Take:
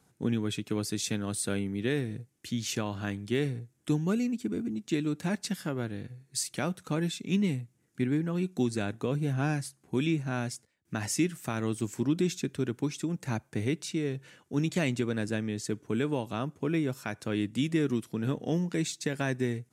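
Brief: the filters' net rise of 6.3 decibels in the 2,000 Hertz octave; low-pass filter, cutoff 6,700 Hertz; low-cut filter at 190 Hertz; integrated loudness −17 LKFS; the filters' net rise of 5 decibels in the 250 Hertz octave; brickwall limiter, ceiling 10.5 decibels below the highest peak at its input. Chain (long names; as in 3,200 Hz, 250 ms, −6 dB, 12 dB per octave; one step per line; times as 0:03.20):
high-pass filter 190 Hz
low-pass filter 6,700 Hz
parametric band 250 Hz +8 dB
parametric band 2,000 Hz +8 dB
level +15.5 dB
brickwall limiter −6.5 dBFS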